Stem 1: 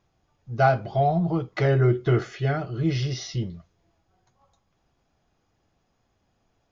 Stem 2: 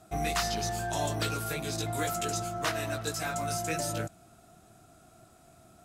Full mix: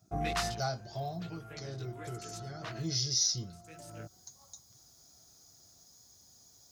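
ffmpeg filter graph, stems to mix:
ffmpeg -i stem1.wav -i stem2.wav -filter_complex "[0:a]aexciter=amount=13.8:drive=8.4:freq=4300,volume=6dB,afade=type=out:start_time=0.92:duration=0.67:silence=0.421697,afade=type=in:start_time=2.46:duration=0.34:silence=0.334965,afade=type=in:start_time=3.61:duration=0.62:silence=0.223872,asplit=2[link_01][link_02];[1:a]afwtdn=0.00794,volume=-3dB[link_03];[link_02]apad=whole_len=257897[link_04];[link_03][link_04]sidechaincompress=threshold=-53dB:ratio=16:attack=36:release=651[link_05];[link_01][link_05]amix=inputs=2:normalize=0,highpass=70,lowshelf=frequency=110:gain=7" out.wav

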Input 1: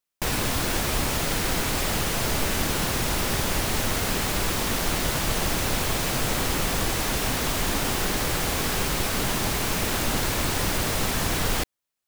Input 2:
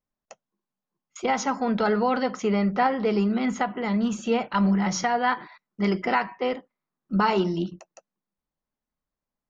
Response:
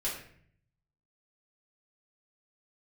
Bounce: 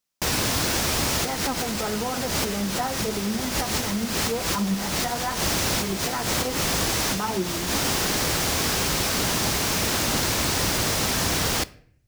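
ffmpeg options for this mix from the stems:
-filter_complex "[0:a]volume=0.5dB,asplit=2[link_01][link_02];[link_02]volume=-19.5dB[link_03];[1:a]lowpass=1800,flanger=delay=3.9:depth=7.2:regen=49:speed=1.5:shape=triangular,volume=-2dB,asplit=2[link_04][link_05];[link_05]apad=whole_len=532474[link_06];[link_01][link_06]sidechaincompress=threshold=-37dB:ratio=8:attack=25:release=104[link_07];[2:a]atrim=start_sample=2205[link_08];[link_03][link_08]afir=irnorm=-1:irlink=0[link_09];[link_07][link_04][link_09]amix=inputs=3:normalize=0,highpass=50,equalizer=frequency=5500:width_type=o:width=0.94:gain=5.5"

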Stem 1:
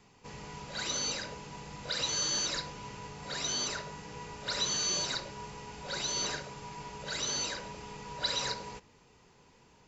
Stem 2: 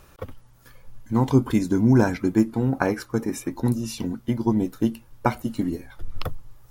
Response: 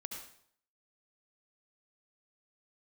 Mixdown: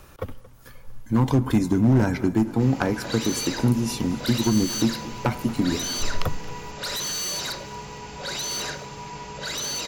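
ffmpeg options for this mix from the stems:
-filter_complex "[0:a]aeval=exprs='0.112*sin(PI/2*3.16*val(0)/0.112)':channel_layout=same,adelay=2350,volume=-6.5dB,asplit=2[link_01][link_02];[link_02]volume=-23dB[link_03];[1:a]asoftclip=type=hard:threshold=-15dB,volume=2.5dB,asplit=3[link_04][link_05][link_06];[link_05]volume=-15.5dB[link_07];[link_06]volume=-18.5dB[link_08];[2:a]atrim=start_sample=2205[link_09];[link_07][link_09]afir=irnorm=-1:irlink=0[link_10];[link_03][link_08]amix=inputs=2:normalize=0,aecho=0:1:227|454|681|908|1135|1362|1589|1816:1|0.54|0.292|0.157|0.085|0.0459|0.0248|0.0134[link_11];[link_01][link_04][link_10][link_11]amix=inputs=4:normalize=0,acrossover=split=210[link_12][link_13];[link_13]acompressor=threshold=-21dB:ratio=6[link_14];[link_12][link_14]amix=inputs=2:normalize=0"

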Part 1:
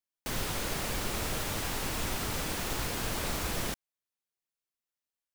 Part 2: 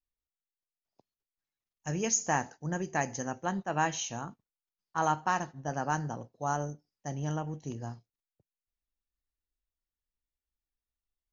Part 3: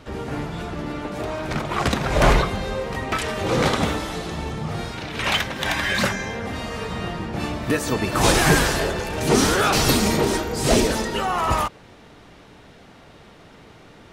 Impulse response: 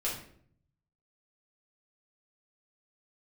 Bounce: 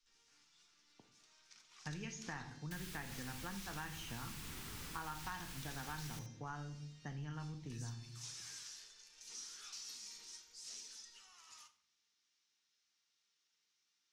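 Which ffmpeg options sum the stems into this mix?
-filter_complex "[0:a]adelay=2450,volume=-13dB,asplit=2[link_01][link_02];[link_02]volume=-12dB[link_03];[1:a]lowpass=1900,acompressor=threshold=-37dB:ratio=2,volume=2dB,asplit=2[link_04][link_05];[link_05]volume=-8dB[link_06];[2:a]bandpass=frequency=5800:width_type=q:width=3.1:csg=0,volume=-19.5dB,asplit=2[link_07][link_08];[link_08]volume=-9dB[link_09];[3:a]atrim=start_sample=2205[link_10];[link_06][link_09]amix=inputs=2:normalize=0[link_11];[link_11][link_10]afir=irnorm=-1:irlink=0[link_12];[link_03]aecho=0:1:72:1[link_13];[link_01][link_04][link_07][link_12][link_13]amix=inputs=5:normalize=0,equalizer=frequency=610:width_type=o:width=0.83:gain=-12,acrossover=split=87|1600[link_14][link_15][link_16];[link_14]acompressor=threshold=-52dB:ratio=4[link_17];[link_15]acompressor=threshold=-49dB:ratio=4[link_18];[link_16]acompressor=threshold=-47dB:ratio=4[link_19];[link_17][link_18][link_19]amix=inputs=3:normalize=0"

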